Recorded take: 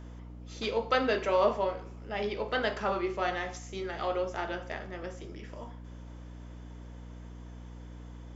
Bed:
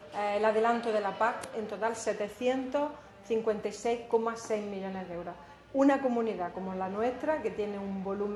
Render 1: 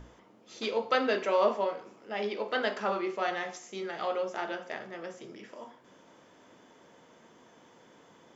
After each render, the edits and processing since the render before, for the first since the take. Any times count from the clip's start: notches 60/120/180/240/300/360 Hz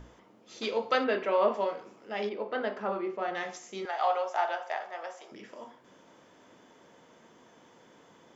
1.04–1.54 LPF 3000 Hz; 2.29–3.35 LPF 1100 Hz 6 dB/oct; 3.85–5.32 resonant high-pass 760 Hz, resonance Q 3.3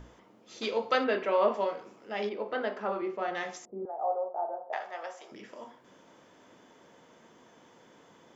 2.53–3.02 HPF 180 Hz; 3.65–4.73 inverse Chebyshev low-pass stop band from 4300 Hz, stop band 80 dB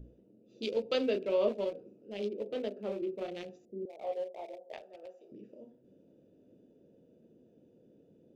Wiener smoothing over 41 samples; band shelf 1200 Hz -14.5 dB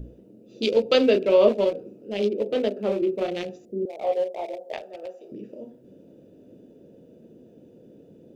gain +12 dB

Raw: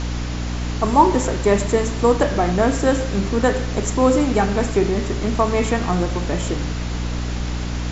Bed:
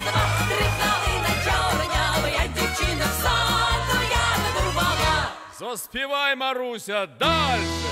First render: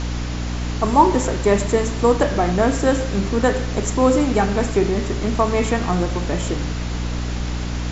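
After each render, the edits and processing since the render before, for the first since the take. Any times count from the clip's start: nothing audible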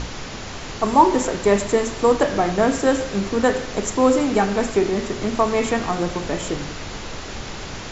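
notches 60/120/180/240/300/360 Hz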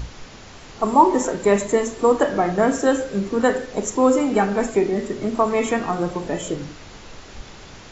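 noise print and reduce 9 dB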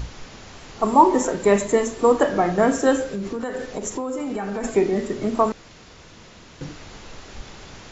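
3.03–4.64 compressor 16:1, threshold -23 dBFS; 5.52–6.61 room tone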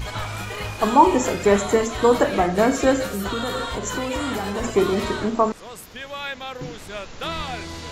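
add bed -8.5 dB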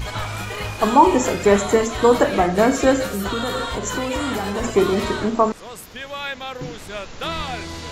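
gain +2 dB; limiter -2 dBFS, peak gain reduction 1.5 dB

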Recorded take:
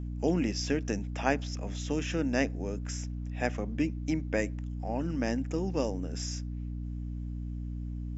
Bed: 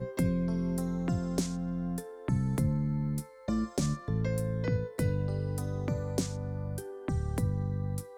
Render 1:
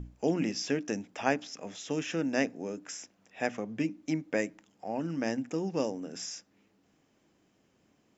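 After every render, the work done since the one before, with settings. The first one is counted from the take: notches 60/120/180/240/300 Hz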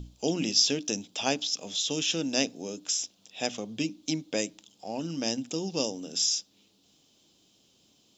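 resonant high shelf 2600 Hz +11 dB, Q 3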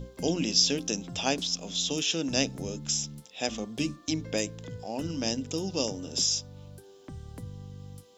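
add bed -11 dB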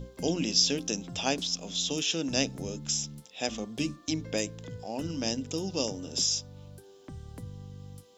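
gain -1 dB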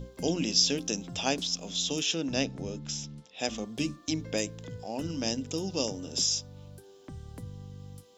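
2.14–3.39 air absorption 100 m

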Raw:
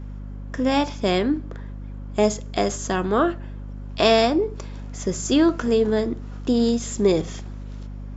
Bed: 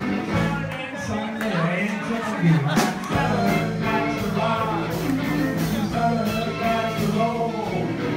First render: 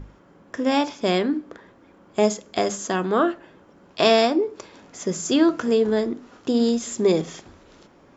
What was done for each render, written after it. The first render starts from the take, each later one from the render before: notches 50/100/150/200/250/300 Hz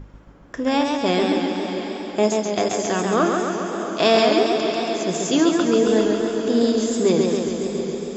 diffused feedback echo 0.631 s, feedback 45%, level -9 dB; warbling echo 0.137 s, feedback 69%, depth 86 cents, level -4 dB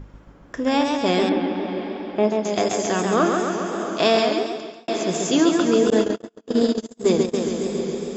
1.29–2.45 air absorption 280 m; 3.96–4.88 fade out; 5.9–7.34 gate -19 dBFS, range -44 dB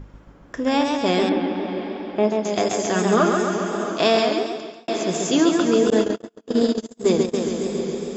2.95–3.92 comb 4.9 ms, depth 57%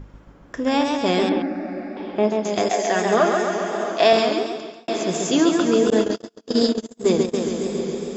1.42–1.97 fixed phaser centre 650 Hz, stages 8; 2.69–4.13 speaker cabinet 250–7100 Hz, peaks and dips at 300 Hz -5 dB, 700 Hz +7 dB, 1300 Hz -4 dB, 1900 Hz +7 dB; 6.11–6.69 bell 5000 Hz +11 dB 0.81 oct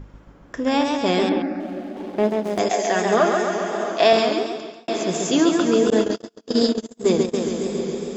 1.6–2.59 median filter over 25 samples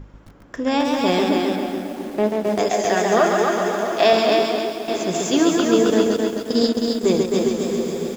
echo 0.439 s -22 dB; lo-fi delay 0.264 s, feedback 35%, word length 7-bit, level -3.5 dB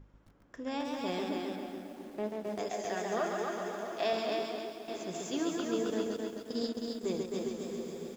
gain -16.5 dB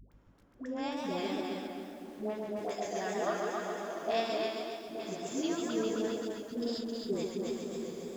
wow and flutter 25 cents; dispersion highs, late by 0.119 s, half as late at 550 Hz

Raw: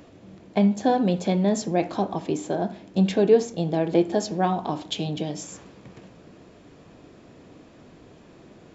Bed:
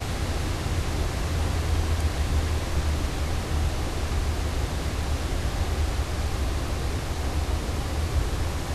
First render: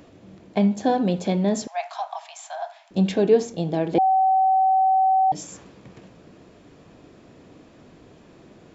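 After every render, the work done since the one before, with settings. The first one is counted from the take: 1.67–2.91 steep high-pass 650 Hz 96 dB/oct; 3.98–5.32 bleep 762 Hz -15 dBFS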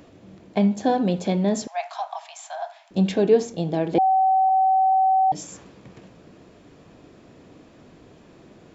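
4.49–4.93 three-band expander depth 100%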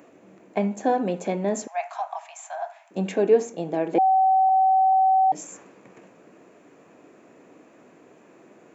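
HPF 280 Hz 12 dB/oct; band shelf 4100 Hz -10 dB 1 oct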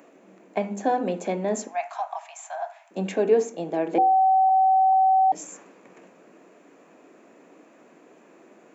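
HPF 170 Hz 24 dB/oct; notches 50/100/150/200/250/300/350/400/450/500 Hz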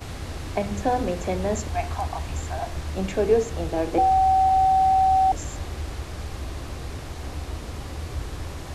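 add bed -6 dB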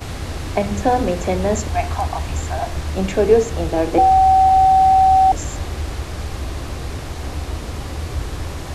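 gain +6.5 dB

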